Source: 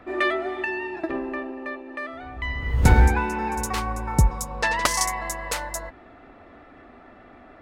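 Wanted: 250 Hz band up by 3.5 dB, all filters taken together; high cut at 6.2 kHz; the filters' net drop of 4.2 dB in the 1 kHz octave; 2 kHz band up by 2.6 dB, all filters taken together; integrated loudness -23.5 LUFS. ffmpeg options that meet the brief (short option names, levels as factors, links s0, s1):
-af "lowpass=6200,equalizer=f=250:t=o:g=5,equalizer=f=1000:t=o:g=-6.5,equalizer=f=2000:t=o:g=5,volume=1.06"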